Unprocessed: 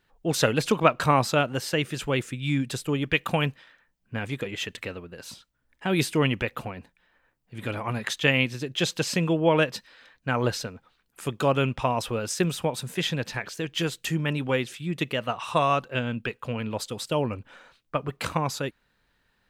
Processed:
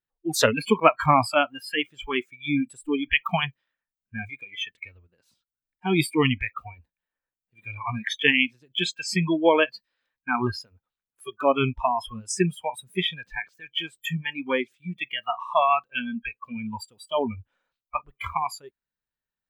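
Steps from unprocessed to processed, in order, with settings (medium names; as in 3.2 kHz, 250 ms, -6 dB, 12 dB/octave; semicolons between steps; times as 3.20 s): spectral noise reduction 29 dB; 12.73–13.43 s: bass shelf 150 Hz +9 dB; trim +3.5 dB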